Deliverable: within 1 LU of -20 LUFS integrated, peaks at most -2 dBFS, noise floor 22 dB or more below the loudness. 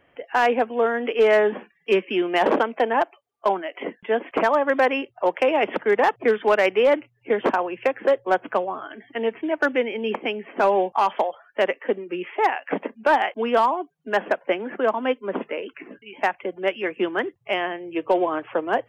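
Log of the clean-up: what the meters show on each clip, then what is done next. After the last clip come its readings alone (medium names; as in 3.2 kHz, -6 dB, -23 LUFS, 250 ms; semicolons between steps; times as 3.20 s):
clipped samples 0.4%; clipping level -11.0 dBFS; loudness -23.0 LUFS; peak level -11.0 dBFS; loudness target -20.0 LUFS
-> clip repair -11 dBFS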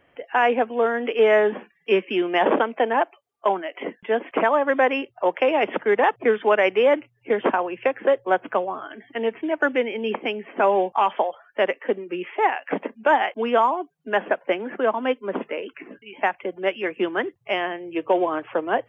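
clipped samples 0.0%; loudness -23.0 LUFS; peak level -8.5 dBFS; loudness target -20.0 LUFS
-> trim +3 dB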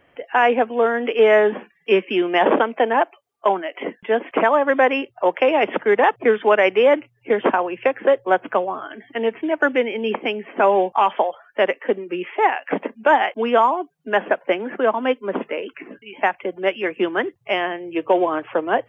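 loudness -20.0 LUFS; peak level -5.5 dBFS; noise floor -62 dBFS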